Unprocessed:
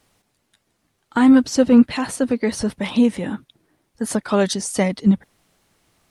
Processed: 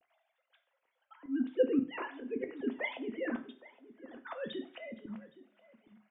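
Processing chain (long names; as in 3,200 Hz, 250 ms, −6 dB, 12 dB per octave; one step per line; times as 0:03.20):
three sine waves on the formant tracks
reversed playback
downward compressor 16 to 1, threshold −20 dBFS, peak gain reduction 18.5 dB
reversed playback
volume swells 649 ms
slap from a distant wall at 140 metres, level −17 dB
coupled-rooms reverb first 0.37 s, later 1.6 s, from −25 dB, DRR 6 dB
level +2.5 dB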